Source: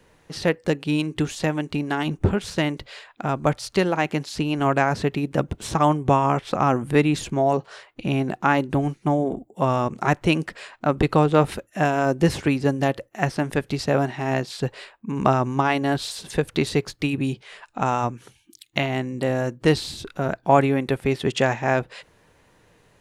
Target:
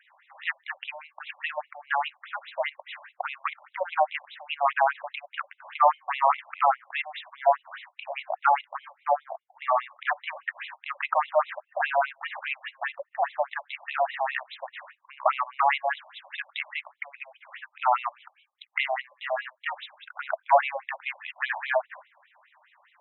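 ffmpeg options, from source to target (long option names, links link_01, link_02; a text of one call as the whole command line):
ffmpeg -i in.wav -filter_complex "[0:a]acrossover=split=3100[link_01][link_02];[link_02]acompressor=threshold=-40dB:ratio=4:attack=1:release=60[link_03];[link_01][link_03]amix=inputs=2:normalize=0,aresample=11025,asoftclip=type=tanh:threshold=-14dB,aresample=44100,highpass=170,lowpass=4100,afftfilt=real='re*between(b*sr/1024,770*pow(2900/770,0.5+0.5*sin(2*PI*4.9*pts/sr))/1.41,770*pow(2900/770,0.5+0.5*sin(2*PI*4.9*pts/sr))*1.41)':imag='im*between(b*sr/1024,770*pow(2900/770,0.5+0.5*sin(2*PI*4.9*pts/sr))/1.41,770*pow(2900/770,0.5+0.5*sin(2*PI*4.9*pts/sr))*1.41)':win_size=1024:overlap=0.75,volume=6dB" out.wav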